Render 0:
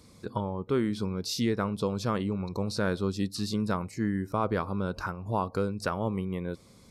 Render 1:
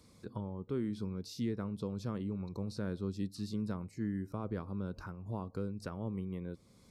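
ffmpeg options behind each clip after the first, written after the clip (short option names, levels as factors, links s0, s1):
-filter_complex "[0:a]acrossover=split=390[s0][s1];[s1]acompressor=threshold=0.00158:ratio=1.5[s2];[s0][s2]amix=inputs=2:normalize=0,volume=0.473"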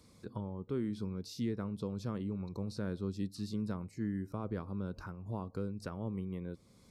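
-af anull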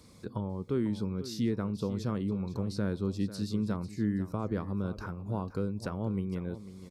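-af "aecho=1:1:496:0.211,volume=1.88"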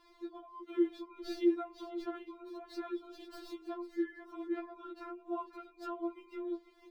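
-filter_complex "[0:a]acrossover=split=410|4200[s0][s1][s2];[s2]acrusher=samples=36:mix=1:aa=0.000001:lfo=1:lforange=36:lforate=1.1[s3];[s0][s1][s3]amix=inputs=3:normalize=0,afftfilt=real='re*4*eq(mod(b,16),0)':imag='im*4*eq(mod(b,16),0)':win_size=2048:overlap=0.75,volume=1.12"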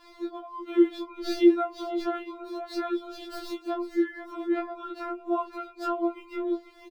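-filter_complex "[0:a]asplit=2[s0][s1];[s1]adelay=16,volume=0.224[s2];[s0][s2]amix=inputs=2:normalize=0,afftfilt=real='re*4*eq(mod(b,16),0)':imag='im*4*eq(mod(b,16),0)':win_size=2048:overlap=0.75,volume=1.41"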